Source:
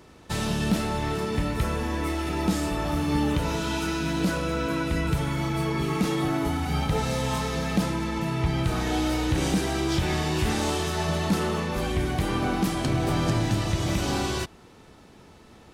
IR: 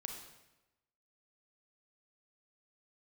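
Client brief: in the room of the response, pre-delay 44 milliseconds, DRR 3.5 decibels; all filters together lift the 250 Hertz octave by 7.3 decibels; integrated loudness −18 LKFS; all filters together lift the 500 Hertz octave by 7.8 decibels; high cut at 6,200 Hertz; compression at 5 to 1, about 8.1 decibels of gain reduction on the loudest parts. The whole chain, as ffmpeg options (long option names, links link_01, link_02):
-filter_complex "[0:a]lowpass=6200,equalizer=frequency=250:width_type=o:gain=7.5,equalizer=frequency=500:width_type=o:gain=7.5,acompressor=threshold=-22dB:ratio=5,asplit=2[link_01][link_02];[1:a]atrim=start_sample=2205,adelay=44[link_03];[link_02][link_03]afir=irnorm=-1:irlink=0,volume=-1.5dB[link_04];[link_01][link_04]amix=inputs=2:normalize=0,volume=7dB"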